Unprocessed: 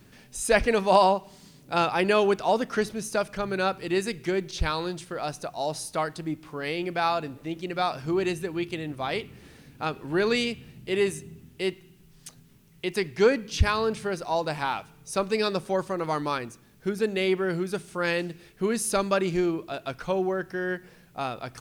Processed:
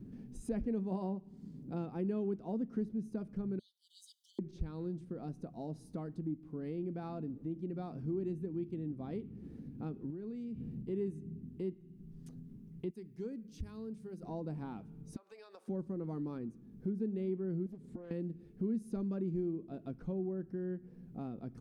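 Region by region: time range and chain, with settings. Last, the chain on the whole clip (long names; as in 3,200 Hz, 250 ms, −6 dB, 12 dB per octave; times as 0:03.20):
0:03.59–0:04.39: linear-phase brick-wall high-pass 2,900 Hz + comb filter 3.9 ms, depth 86%
0:10.10–0:10.83: mu-law and A-law mismatch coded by mu + downward compressor, threshold −37 dBFS
0:12.90–0:14.23: first-order pre-emphasis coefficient 0.8 + mains-hum notches 50/100/150/200 Hz
0:15.16–0:15.68: high-pass filter 720 Hz 24 dB per octave + downward compressor 12 to 1, threshold −36 dBFS
0:17.66–0:18.11: EQ curve with evenly spaced ripples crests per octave 1, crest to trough 8 dB + downward compressor, threshold −38 dBFS + highs frequency-modulated by the lows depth 0.95 ms
whole clip: drawn EQ curve 120 Hz 0 dB, 220 Hz +9 dB, 900 Hz −17 dB, 2,800 Hz −25 dB; downward compressor 2 to 1, threshold −48 dBFS; notch filter 600 Hz, Q 12; level +2.5 dB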